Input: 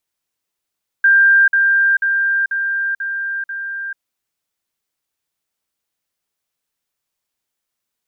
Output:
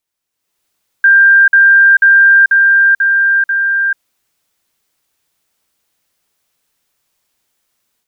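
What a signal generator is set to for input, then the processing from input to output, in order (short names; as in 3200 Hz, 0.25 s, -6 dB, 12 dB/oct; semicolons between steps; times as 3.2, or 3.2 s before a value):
level ladder 1590 Hz -7.5 dBFS, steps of -3 dB, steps 6, 0.44 s 0.05 s
limiter -14.5 dBFS; AGC gain up to 12.5 dB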